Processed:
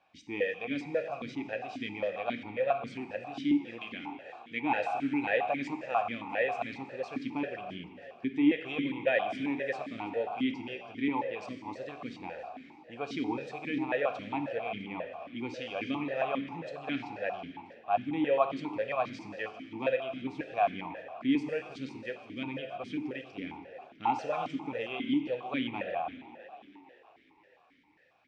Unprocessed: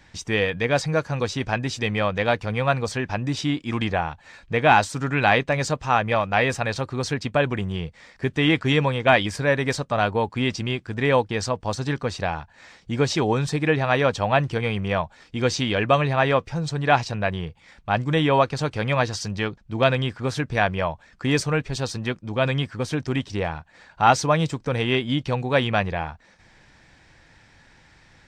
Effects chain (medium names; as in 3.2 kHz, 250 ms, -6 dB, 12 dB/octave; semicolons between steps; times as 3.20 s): 3.81–4.61 s: tilt EQ +2 dB/octave; frequency-shifting echo 327 ms, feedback 61%, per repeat +60 Hz, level -16.5 dB; plate-style reverb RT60 1.6 s, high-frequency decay 0.95×, DRR 6 dB; stepped vowel filter 7.4 Hz; trim -1 dB